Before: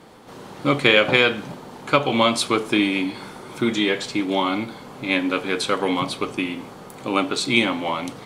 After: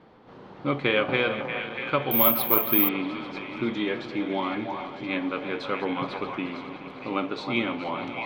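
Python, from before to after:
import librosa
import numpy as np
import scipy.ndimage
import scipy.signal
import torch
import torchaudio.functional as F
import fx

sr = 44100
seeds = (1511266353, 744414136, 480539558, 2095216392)

y = fx.reverse_delay_fb(x, sr, ms=212, feedback_pct=80, wet_db=-13.0)
y = fx.air_absorb(y, sr, metres=270.0)
y = fx.echo_stepped(y, sr, ms=318, hz=800.0, octaves=1.4, feedback_pct=70, wet_db=-3.0)
y = fx.resample_bad(y, sr, factor=3, down='filtered', up='zero_stuff', at=(2.11, 2.89))
y = y * 10.0 ** (-6.0 / 20.0)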